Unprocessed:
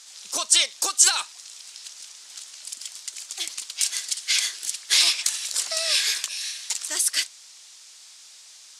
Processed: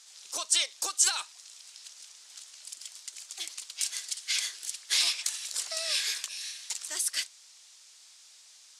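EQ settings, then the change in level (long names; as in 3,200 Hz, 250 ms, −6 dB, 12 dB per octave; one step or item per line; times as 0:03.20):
high-pass filter 310 Hz 24 dB per octave
−7.5 dB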